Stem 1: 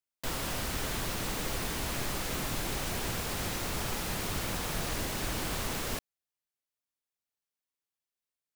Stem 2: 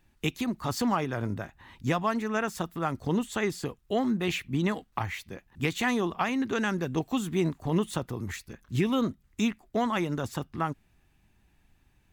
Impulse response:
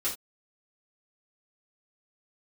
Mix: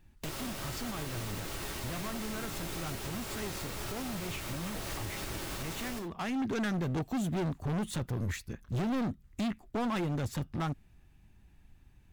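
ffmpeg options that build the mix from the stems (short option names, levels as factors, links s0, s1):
-filter_complex "[0:a]volume=0.75,asplit=2[s0][s1];[s1]volume=0.501[s2];[1:a]lowshelf=f=230:g=8.5,asoftclip=type=hard:threshold=0.0398,volume=0.841[s3];[2:a]atrim=start_sample=2205[s4];[s2][s4]afir=irnorm=-1:irlink=0[s5];[s0][s3][s5]amix=inputs=3:normalize=0,alimiter=level_in=1.58:limit=0.0631:level=0:latency=1:release=482,volume=0.631"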